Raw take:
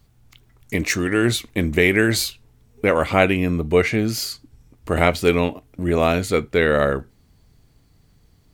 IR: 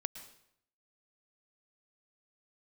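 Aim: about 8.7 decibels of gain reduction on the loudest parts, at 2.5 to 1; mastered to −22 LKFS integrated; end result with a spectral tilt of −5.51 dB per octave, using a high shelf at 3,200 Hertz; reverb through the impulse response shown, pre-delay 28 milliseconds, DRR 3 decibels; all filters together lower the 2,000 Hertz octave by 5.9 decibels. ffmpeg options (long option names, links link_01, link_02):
-filter_complex "[0:a]equalizer=frequency=2000:width_type=o:gain=-5.5,highshelf=frequency=3200:gain=-5,acompressor=threshold=-25dB:ratio=2.5,asplit=2[link_01][link_02];[1:a]atrim=start_sample=2205,adelay=28[link_03];[link_02][link_03]afir=irnorm=-1:irlink=0,volume=-2.5dB[link_04];[link_01][link_04]amix=inputs=2:normalize=0,volume=4dB"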